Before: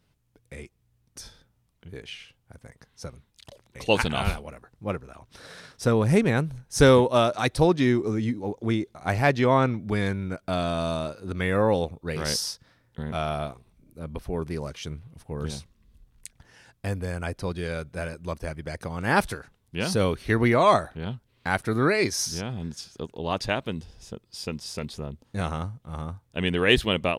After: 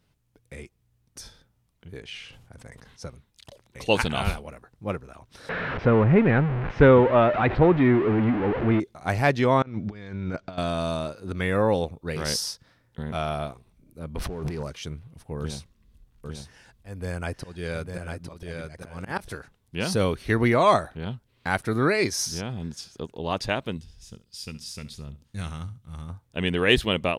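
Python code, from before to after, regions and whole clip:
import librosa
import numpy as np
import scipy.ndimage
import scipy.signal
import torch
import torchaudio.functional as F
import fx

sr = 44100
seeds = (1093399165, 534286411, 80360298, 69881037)

y = fx.chain(x, sr, fx.bessel_lowpass(hz=10000.0, order=2),
    fx.sustainer(db_per_s=52.0), at=(2.0, 3.07))
y = fx.chain(y, sr, fx.zero_step(step_db=-22.0),
    fx.lowpass(hz=2400.0, slope=24), at=(5.49, 8.8))
y = fx.chain(y, sr, fx.lowpass(hz=6100.0, slope=24),
    fx.over_compress(threshold_db=-32.0, ratio=-0.5), at=(9.62, 10.58))
y = fx.chain(y, sr, fx.over_compress(threshold_db=-40.0, ratio=-1.0),
    fx.leveller(passes=3),
    fx.high_shelf(hz=8300.0, db=-9.0), at=(14.16, 14.63))
y = fx.chain(y, sr, fx.auto_swell(attack_ms=234.0),
    fx.echo_single(ms=851, db=-5.0), at=(15.39, 19.34))
y = fx.chain(y, sr, fx.peak_eq(hz=610.0, db=-13.5, octaves=2.7),
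    fx.echo_feedback(ms=69, feedback_pct=23, wet_db=-16), at=(23.77, 26.1))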